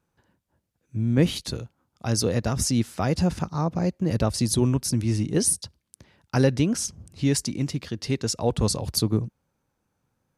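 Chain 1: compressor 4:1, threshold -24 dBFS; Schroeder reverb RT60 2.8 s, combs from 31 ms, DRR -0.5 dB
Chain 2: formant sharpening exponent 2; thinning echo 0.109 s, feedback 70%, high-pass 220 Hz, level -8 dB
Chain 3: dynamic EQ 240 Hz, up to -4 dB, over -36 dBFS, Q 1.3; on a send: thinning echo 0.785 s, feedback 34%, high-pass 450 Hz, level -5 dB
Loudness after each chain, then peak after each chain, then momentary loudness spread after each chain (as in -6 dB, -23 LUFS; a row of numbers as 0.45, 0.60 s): -26.5, -24.5, -26.0 LUFS; -11.0, -8.0, -9.5 dBFS; 8, 11, 11 LU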